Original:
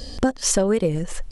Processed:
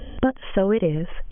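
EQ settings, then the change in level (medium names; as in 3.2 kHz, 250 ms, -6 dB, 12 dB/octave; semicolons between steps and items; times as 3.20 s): brick-wall FIR low-pass 3.4 kHz; 0.0 dB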